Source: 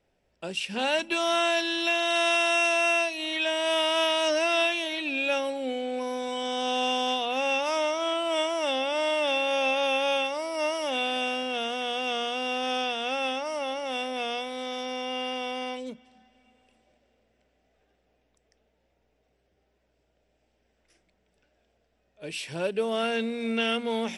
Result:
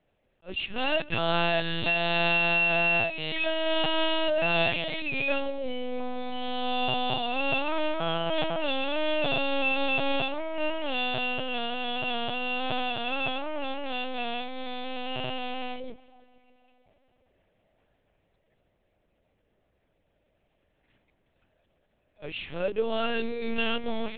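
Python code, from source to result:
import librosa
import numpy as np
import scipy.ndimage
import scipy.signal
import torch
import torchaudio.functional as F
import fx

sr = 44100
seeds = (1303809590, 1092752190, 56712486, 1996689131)

y = fx.echo_tape(x, sr, ms=142, feedback_pct=84, wet_db=-22.0, lp_hz=1800.0, drive_db=15.0, wow_cents=28)
y = fx.lpc_vocoder(y, sr, seeds[0], excitation='pitch_kept', order=8)
y = fx.attack_slew(y, sr, db_per_s=420.0)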